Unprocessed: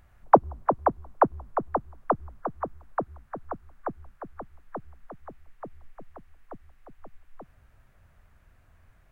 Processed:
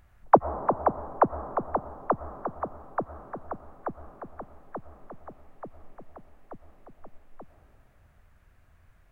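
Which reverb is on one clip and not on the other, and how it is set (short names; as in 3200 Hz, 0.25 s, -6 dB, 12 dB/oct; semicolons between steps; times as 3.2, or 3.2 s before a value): digital reverb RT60 2.5 s, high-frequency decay 0.35×, pre-delay 65 ms, DRR 13.5 dB; gain -1 dB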